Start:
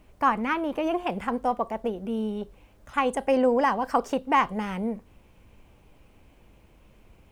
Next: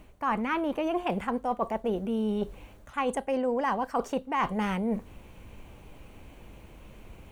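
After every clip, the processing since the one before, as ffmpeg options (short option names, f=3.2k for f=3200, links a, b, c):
-af "bandreject=f=5.1k:w=11,areverse,acompressor=threshold=-33dB:ratio=6,areverse,volume=7dB"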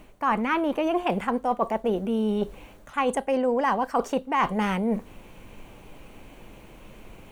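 -af "equalizer=f=69:t=o:w=1.2:g=-10.5,volume=4.5dB"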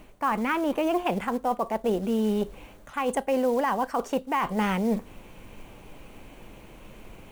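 -af "alimiter=limit=-16dB:level=0:latency=1:release=184,acrusher=bits=6:mode=log:mix=0:aa=0.000001"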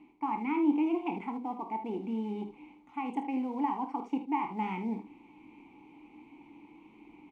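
-filter_complex "[0:a]asplit=3[a][b][c];[a]bandpass=f=300:t=q:w=8,volume=0dB[d];[b]bandpass=f=870:t=q:w=8,volume=-6dB[e];[c]bandpass=f=2.24k:t=q:w=8,volume=-9dB[f];[d][e][f]amix=inputs=3:normalize=0,aecho=1:1:27|52|76:0.299|0.282|0.282,volume=4dB"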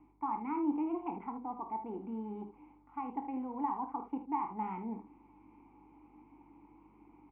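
-af "aeval=exprs='val(0)+0.000708*(sin(2*PI*50*n/s)+sin(2*PI*2*50*n/s)/2+sin(2*PI*3*50*n/s)/3+sin(2*PI*4*50*n/s)/4+sin(2*PI*5*50*n/s)/5)':c=same,lowpass=f=1.3k:t=q:w=2,volume=-6.5dB"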